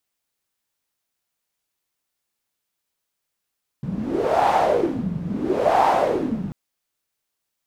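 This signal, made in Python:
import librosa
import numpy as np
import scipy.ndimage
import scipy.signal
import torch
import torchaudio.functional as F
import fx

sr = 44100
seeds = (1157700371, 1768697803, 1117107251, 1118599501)

y = fx.wind(sr, seeds[0], length_s=2.69, low_hz=170.0, high_hz=820.0, q=5.4, gusts=2, swing_db=10.5)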